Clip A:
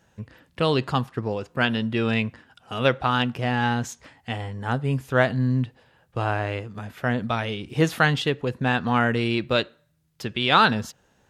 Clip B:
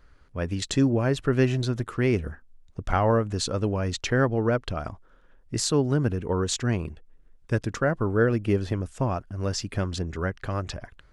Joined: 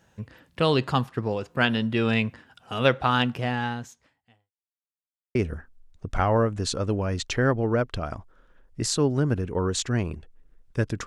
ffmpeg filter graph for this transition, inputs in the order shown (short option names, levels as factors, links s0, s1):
-filter_complex "[0:a]apad=whole_dur=11.06,atrim=end=11.06,asplit=2[s0][s1];[s0]atrim=end=4.52,asetpts=PTS-STARTPTS,afade=t=out:st=3.32:d=1.2:c=qua[s2];[s1]atrim=start=4.52:end=5.35,asetpts=PTS-STARTPTS,volume=0[s3];[1:a]atrim=start=2.09:end=7.8,asetpts=PTS-STARTPTS,afade=t=in:d=0.004:c=hsin[s4];[s2][s3][s4]concat=n=3:v=0:a=1"